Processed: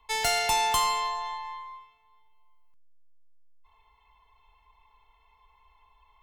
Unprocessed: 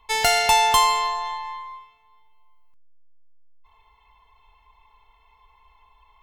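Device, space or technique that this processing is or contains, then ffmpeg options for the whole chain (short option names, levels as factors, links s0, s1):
one-band saturation: -filter_complex "[0:a]acrossover=split=210|4400[s0][s1][s2];[s1]asoftclip=type=tanh:threshold=0.168[s3];[s0][s3][s2]amix=inputs=3:normalize=0,volume=0.562"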